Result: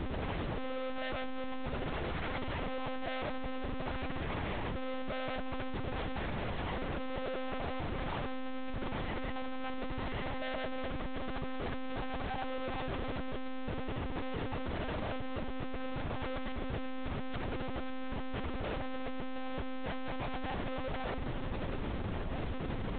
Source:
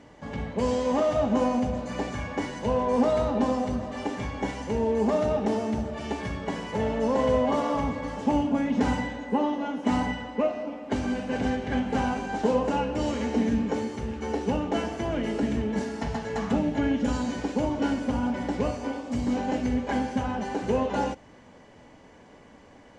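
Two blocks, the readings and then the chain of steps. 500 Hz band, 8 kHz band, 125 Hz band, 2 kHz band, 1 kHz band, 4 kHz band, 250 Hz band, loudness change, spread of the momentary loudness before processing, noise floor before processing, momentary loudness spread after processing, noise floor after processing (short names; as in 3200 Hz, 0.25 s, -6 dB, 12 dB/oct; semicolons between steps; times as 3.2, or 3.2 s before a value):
-12.5 dB, under -35 dB, -6.5 dB, -5.0 dB, -10.0 dB, -4.5 dB, -14.0 dB, -11.5 dB, 8 LU, -52 dBFS, 3 LU, -37 dBFS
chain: dynamic EQ 200 Hz, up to +3 dB, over -36 dBFS, Q 1.5; compressor 4:1, threshold -31 dBFS, peak gain reduction 12.5 dB; limiter -27.5 dBFS, peak gain reduction 7.5 dB; Schmitt trigger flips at -49 dBFS; monotone LPC vocoder at 8 kHz 260 Hz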